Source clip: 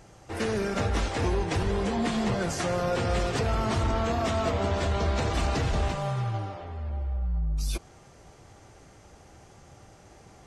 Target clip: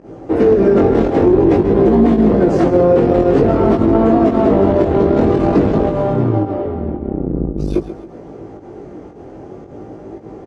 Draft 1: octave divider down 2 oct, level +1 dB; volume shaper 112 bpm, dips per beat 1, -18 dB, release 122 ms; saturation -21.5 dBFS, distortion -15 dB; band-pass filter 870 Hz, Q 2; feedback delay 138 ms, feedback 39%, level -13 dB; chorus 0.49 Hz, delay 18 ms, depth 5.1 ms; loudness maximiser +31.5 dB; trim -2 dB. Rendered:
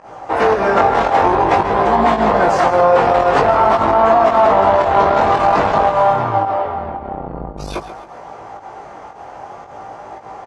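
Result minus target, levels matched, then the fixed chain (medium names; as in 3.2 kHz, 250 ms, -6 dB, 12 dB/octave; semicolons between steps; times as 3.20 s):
250 Hz band -11.0 dB
octave divider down 2 oct, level +1 dB; volume shaper 112 bpm, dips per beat 1, -18 dB, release 122 ms; saturation -21.5 dBFS, distortion -15 dB; band-pass filter 340 Hz, Q 2; feedback delay 138 ms, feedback 39%, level -13 dB; chorus 0.49 Hz, delay 18 ms, depth 5.1 ms; loudness maximiser +31.5 dB; trim -2 dB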